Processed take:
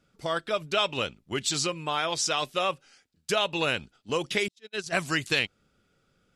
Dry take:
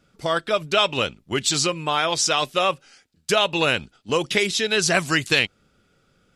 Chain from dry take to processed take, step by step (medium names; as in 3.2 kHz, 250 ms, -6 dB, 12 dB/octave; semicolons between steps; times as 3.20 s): 4.48–4.93 s: gate -18 dBFS, range -49 dB; trim -6.5 dB